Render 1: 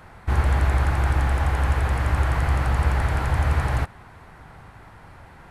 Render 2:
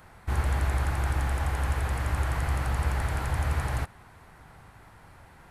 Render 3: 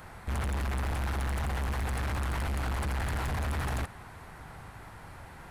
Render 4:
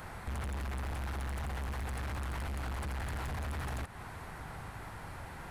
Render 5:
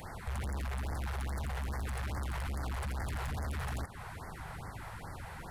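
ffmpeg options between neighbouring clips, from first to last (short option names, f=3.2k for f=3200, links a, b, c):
-af "highshelf=f=5.9k:g=9.5,volume=-6.5dB"
-af "asoftclip=type=tanh:threshold=-34dB,volume=5dB"
-af "acompressor=threshold=-39dB:ratio=6,volume=2dB"
-af "afftfilt=real='re*(1-between(b*sr/1024,240*pow(3200/240,0.5+0.5*sin(2*PI*2.4*pts/sr))/1.41,240*pow(3200/240,0.5+0.5*sin(2*PI*2.4*pts/sr))*1.41))':imag='im*(1-between(b*sr/1024,240*pow(3200/240,0.5+0.5*sin(2*PI*2.4*pts/sr))/1.41,240*pow(3200/240,0.5+0.5*sin(2*PI*2.4*pts/sr))*1.41))':win_size=1024:overlap=0.75,volume=1dB"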